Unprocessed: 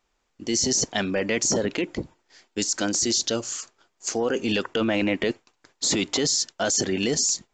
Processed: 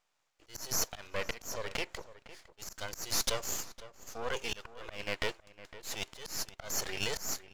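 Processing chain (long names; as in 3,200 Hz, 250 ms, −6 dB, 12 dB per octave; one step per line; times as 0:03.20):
inverse Chebyshev high-pass filter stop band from 200 Hz, stop band 50 dB
half-wave rectification
volume swells 320 ms
slap from a distant wall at 87 metres, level −15 dB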